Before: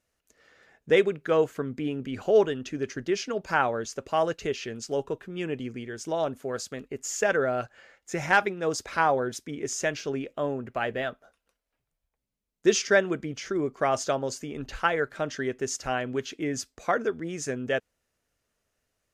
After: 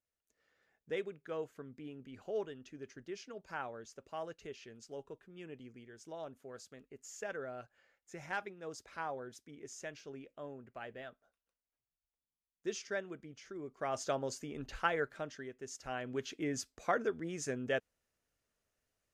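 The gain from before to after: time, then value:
13.6 s -17.5 dB
14.13 s -8 dB
15.04 s -8 dB
15.53 s -18 dB
16.28 s -7 dB

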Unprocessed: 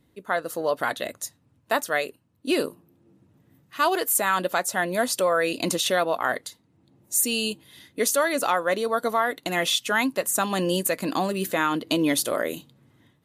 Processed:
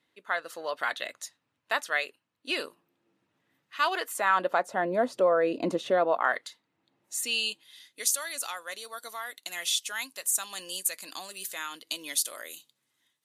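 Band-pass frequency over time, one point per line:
band-pass, Q 0.69
3.83 s 2500 Hz
4.87 s 470 Hz
5.98 s 470 Hz
6.42 s 2200 Hz
7.19 s 2200 Hz
8.14 s 7900 Hz

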